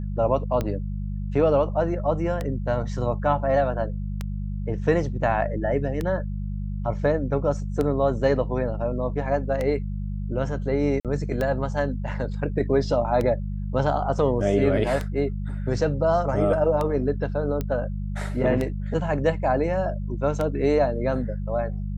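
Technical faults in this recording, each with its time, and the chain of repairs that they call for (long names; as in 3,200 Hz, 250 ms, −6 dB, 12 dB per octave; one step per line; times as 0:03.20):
mains hum 50 Hz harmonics 4 −29 dBFS
scratch tick 33 1/3 rpm −14 dBFS
0:11.00–0:11.05: drop-out 47 ms
0:17.61: click −15 dBFS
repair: click removal
hum removal 50 Hz, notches 4
repair the gap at 0:11.00, 47 ms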